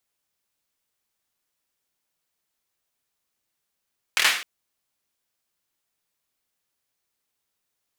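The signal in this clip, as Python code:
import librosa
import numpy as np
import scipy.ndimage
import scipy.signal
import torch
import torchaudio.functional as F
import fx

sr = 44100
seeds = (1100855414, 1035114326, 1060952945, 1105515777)

y = fx.drum_clap(sr, seeds[0], length_s=0.26, bursts=4, spacing_ms=25, hz=2200.0, decay_s=0.49)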